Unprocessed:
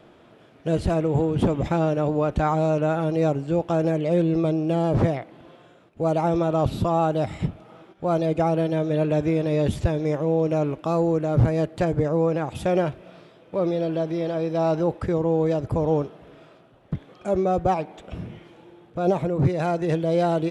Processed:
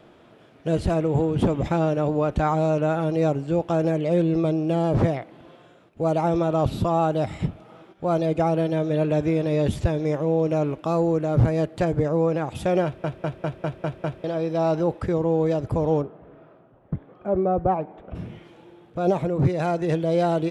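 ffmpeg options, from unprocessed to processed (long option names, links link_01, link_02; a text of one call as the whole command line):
ffmpeg -i in.wav -filter_complex "[0:a]asplit=3[link_01][link_02][link_03];[link_01]afade=type=out:start_time=16.01:duration=0.02[link_04];[link_02]lowpass=1400,afade=type=in:start_time=16.01:duration=0.02,afade=type=out:start_time=18.14:duration=0.02[link_05];[link_03]afade=type=in:start_time=18.14:duration=0.02[link_06];[link_04][link_05][link_06]amix=inputs=3:normalize=0,asplit=8[link_07][link_08][link_09][link_10][link_11][link_12][link_13][link_14];[link_07]atrim=end=13.042[link_15];[link_08]atrim=start=12.838:end=13.042[link_16];[link_09]atrim=start=12.838:end=13.042[link_17];[link_10]atrim=start=12.838:end=13.042[link_18];[link_11]atrim=start=12.838:end=13.042[link_19];[link_12]atrim=start=12.838:end=13.042[link_20];[link_13]atrim=start=12.838:end=13.042[link_21];[link_14]atrim=start=14.238[link_22];[link_15][link_16]acrossfade=duration=0.004:curve1=hsin:curve2=hsin[link_23];[link_23][link_17]acrossfade=duration=0.004:curve1=hsin:curve2=hsin[link_24];[link_24][link_18]acrossfade=duration=0.004:curve1=hsin:curve2=hsin[link_25];[link_25][link_19]acrossfade=duration=0.004:curve1=hsin:curve2=hsin[link_26];[link_26][link_20]acrossfade=duration=0.004:curve1=hsin:curve2=hsin[link_27];[link_27][link_21]acrossfade=duration=0.004:curve1=hsin:curve2=hsin[link_28];[link_28][link_22]acrossfade=duration=0.004:curve1=hsin:curve2=hsin" out.wav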